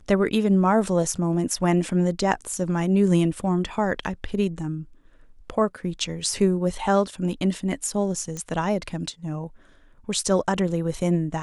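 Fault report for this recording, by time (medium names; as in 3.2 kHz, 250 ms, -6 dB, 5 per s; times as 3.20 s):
8.37 s: pop -19 dBFS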